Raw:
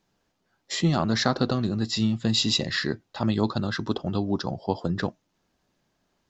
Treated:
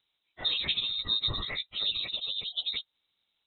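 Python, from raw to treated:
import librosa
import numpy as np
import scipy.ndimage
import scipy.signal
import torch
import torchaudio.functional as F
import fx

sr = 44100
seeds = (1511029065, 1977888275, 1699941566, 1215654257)

y = fx.stretch_vocoder_free(x, sr, factor=0.55)
y = fx.freq_invert(y, sr, carrier_hz=3900)
y = F.gain(torch.from_numpy(y), -3.0).numpy()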